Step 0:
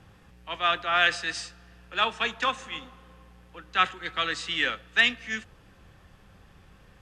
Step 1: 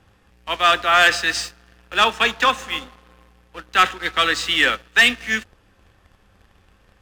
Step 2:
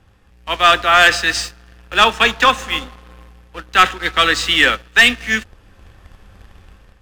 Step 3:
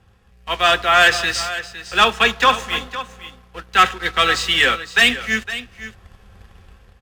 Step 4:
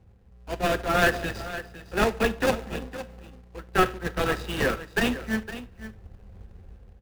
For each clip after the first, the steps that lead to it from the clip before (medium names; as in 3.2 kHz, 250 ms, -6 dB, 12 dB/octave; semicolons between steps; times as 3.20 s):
peaking EQ 150 Hz -11 dB 0.39 oct; waveshaping leveller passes 2; trim +3 dB
bass shelf 88 Hz +8.5 dB; level rider gain up to 8 dB
comb of notches 300 Hz; delay 510 ms -13.5 dB; trim -1 dB
median filter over 41 samples; reverberation RT60 0.35 s, pre-delay 31 ms, DRR 17.5 dB